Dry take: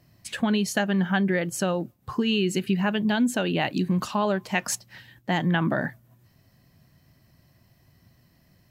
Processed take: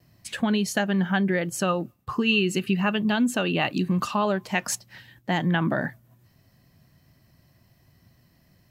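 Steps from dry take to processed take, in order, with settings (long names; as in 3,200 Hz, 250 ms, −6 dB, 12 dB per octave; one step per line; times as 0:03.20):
noise gate with hold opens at −55 dBFS
0:01.62–0:04.29: hollow resonant body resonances 1,200/2,700 Hz, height 12 dB → 9 dB, ringing for 30 ms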